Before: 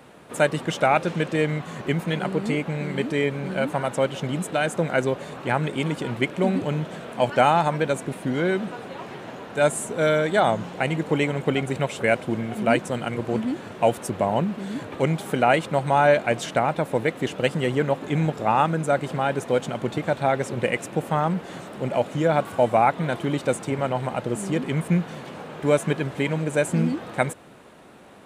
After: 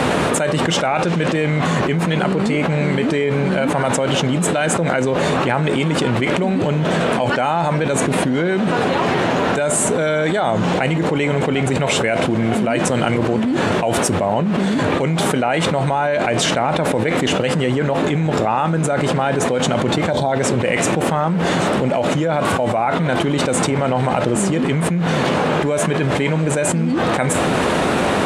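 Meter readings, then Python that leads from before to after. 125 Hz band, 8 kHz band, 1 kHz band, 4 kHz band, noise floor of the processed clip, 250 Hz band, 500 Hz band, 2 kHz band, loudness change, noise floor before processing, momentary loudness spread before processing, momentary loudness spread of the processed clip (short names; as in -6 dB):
+7.5 dB, +13.0 dB, +5.0 dB, +10.5 dB, -19 dBFS, +8.0 dB, +5.5 dB, +6.5 dB, +6.0 dB, -39 dBFS, 8 LU, 1 LU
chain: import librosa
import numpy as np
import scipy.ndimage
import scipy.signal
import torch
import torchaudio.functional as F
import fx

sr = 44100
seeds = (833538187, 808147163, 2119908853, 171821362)

y = scipy.signal.sosfilt(scipy.signal.butter(2, 9100.0, 'lowpass', fs=sr, output='sos'), x)
y = fx.spec_box(y, sr, start_s=20.11, length_s=0.21, low_hz=1100.0, high_hz=3000.0, gain_db=-14)
y = fx.comb_fb(y, sr, f0_hz=85.0, decay_s=0.23, harmonics='all', damping=0.0, mix_pct=50)
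y = fx.env_flatten(y, sr, amount_pct=100)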